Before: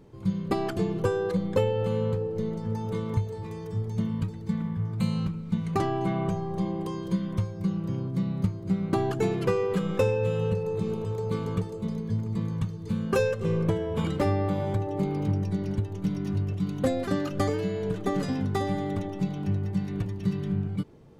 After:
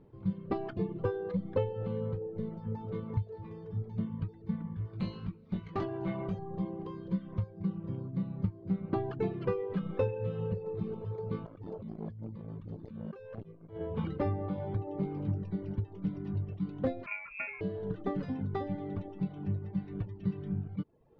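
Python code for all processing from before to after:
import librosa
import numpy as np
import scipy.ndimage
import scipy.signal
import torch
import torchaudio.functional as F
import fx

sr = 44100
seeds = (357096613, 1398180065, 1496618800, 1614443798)

y = fx.chain(x, sr, fx.high_shelf(hz=2100.0, db=9.0),
    fx.tube_stage(drive_db=19.0, bias=0.4),
    fx.doubler(ms=21.0, db=-5), at=(4.76, 6.39))
y = fx.chain(y, sr, fx.hum_notches(base_hz=60, count=7),
    fx.over_compress(threshold_db=-34.0, ratio=-1.0),
    fx.transformer_sat(knee_hz=400.0), at=(11.45, 13.81))
y = fx.chain(y, sr, fx.peak_eq(hz=610.0, db=-11.0, octaves=0.73),
    fx.freq_invert(carrier_hz=2600), at=(17.06, 17.61))
y = fx.dereverb_blind(y, sr, rt60_s=0.72)
y = scipy.signal.sosfilt(scipy.signal.butter(4, 4400.0, 'lowpass', fs=sr, output='sos'), y)
y = fx.high_shelf(y, sr, hz=2300.0, db=-12.0)
y = y * 10.0 ** (-5.0 / 20.0)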